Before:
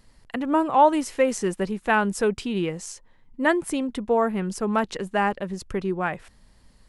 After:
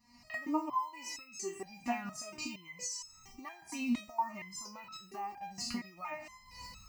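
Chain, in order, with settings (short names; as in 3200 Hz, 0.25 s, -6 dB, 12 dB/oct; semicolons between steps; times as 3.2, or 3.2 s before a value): spectral trails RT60 0.56 s; recorder AGC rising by 57 dB/s; in parallel at -4.5 dB: short-mantissa float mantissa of 2-bit; on the sum: reverb removal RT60 0.53 s; compressor 4:1, threshold -17 dBFS, peak gain reduction 9 dB; HPF 100 Hz 12 dB/oct; fixed phaser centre 2300 Hz, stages 8; stepped resonator 4.3 Hz 240–1300 Hz; gain +3 dB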